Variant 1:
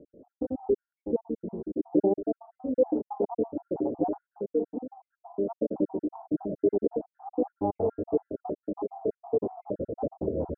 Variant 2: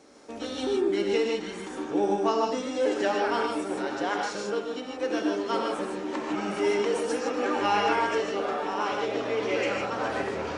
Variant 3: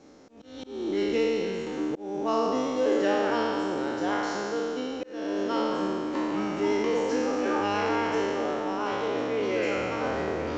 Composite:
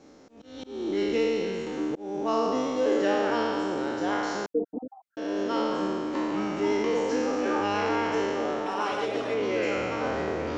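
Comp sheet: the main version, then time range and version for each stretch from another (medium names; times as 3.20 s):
3
4.46–5.17 s: from 1
8.66–9.34 s: from 2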